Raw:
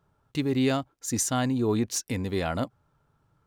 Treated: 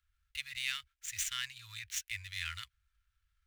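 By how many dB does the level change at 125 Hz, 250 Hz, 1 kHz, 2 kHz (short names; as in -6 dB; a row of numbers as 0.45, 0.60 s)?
-23.0 dB, under -40 dB, -19.0 dB, -1.5 dB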